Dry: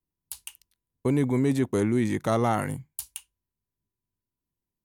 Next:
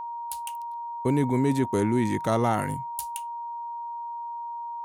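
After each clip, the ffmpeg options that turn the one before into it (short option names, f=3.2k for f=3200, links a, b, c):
-af "aeval=exprs='val(0)+0.0251*sin(2*PI*940*n/s)':c=same"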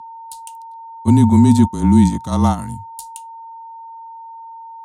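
-af "equalizer=f=125:t=o:w=1:g=9,equalizer=f=250:t=o:w=1:g=12,equalizer=f=500:t=o:w=1:g=-9,equalizer=f=1k:t=o:w=1:g=9,equalizer=f=2k:t=o:w=1:g=-8,equalizer=f=4k:t=o:w=1:g=9,equalizer=f=8k:t=o:w=1:g=11,afreqshift=-29,agate=range=-10dB:threshold=-15dB:ratio=16:detection=peak,volume=3dB"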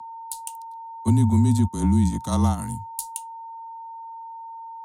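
-filter_complex "[0:a]acrossover=split=130[a][b];[b]acompressor=threshold=-18dB:ratio=10[c];[a][c]amix=inputs=2:normalize=0,acrossover=split=230|730|1900[d][e][f][g];[g]crystalizer=i=1:c=0[h];[d][e][f][h]amix=inputs=4:normalize=0,volume=-2.5dB"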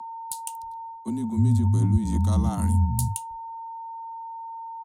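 -filter_complex "[0:a]lowshelf=f=320:g=11,areverse,acompressor=threshold=-17dB:ratio=6,areverse,acrossover=split=190[a][b];[a]adelay=300[c];[c][b]amix=inputs=2:normalize=0"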